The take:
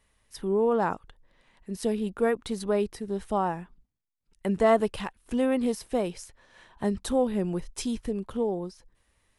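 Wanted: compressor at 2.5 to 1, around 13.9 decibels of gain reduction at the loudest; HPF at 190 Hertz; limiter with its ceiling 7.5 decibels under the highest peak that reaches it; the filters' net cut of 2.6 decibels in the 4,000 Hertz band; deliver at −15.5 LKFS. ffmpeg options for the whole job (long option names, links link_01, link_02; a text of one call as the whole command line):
ffmpeg -i in.wav -af "highpass=190,equalizer=frequency=4000:width_type=o:gain=-3.5,acompressor=threshold=-39dB:ratio=2.5,volume=26.5dB,alimiter=limit=-5dB:level=0:latency=1" out.wav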